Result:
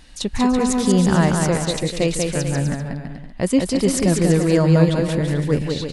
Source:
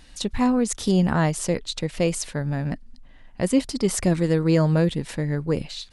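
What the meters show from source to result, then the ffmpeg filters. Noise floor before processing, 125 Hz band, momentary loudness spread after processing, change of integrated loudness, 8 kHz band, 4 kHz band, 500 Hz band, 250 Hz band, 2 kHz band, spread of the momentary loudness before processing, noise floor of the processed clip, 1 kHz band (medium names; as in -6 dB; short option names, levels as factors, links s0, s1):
-48 dBFS, +5.0 dB, 10 LU, +4.5 dB, +4.5 dB, +4.5 dB, +4.5 dB, +4.5 dB, +4.5 dB, 9 LU, -35 dBFS, +4.5 dB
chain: -af "aecho=1:1:190|332.5|439.4|519.5|579.6:0.631|0.398|0.251|0.158|0.1,volume=1.33"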